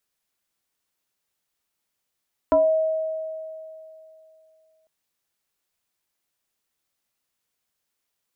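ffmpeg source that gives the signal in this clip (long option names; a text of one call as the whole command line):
ffmpeg -f lavfi -i "aevalsrc='0.224*pow(10,-3*t/2.84)*sin(2*PI*636*t+1.1*pow(10,-3*t/0.29)*sin(2*PI*0.55*636*t))':duration=2.35:sample_rate=44100" out.wav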